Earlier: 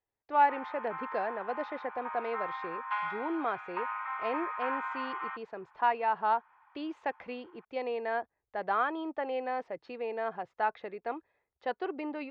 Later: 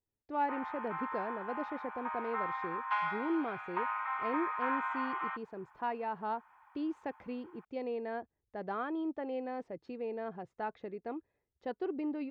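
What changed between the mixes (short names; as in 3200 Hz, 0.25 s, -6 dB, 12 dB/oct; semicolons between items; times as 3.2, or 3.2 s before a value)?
speech -10.0 dB; master: remove three-band isolator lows -15 dB, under 570 Hz, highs -16 dB, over 5000 Hz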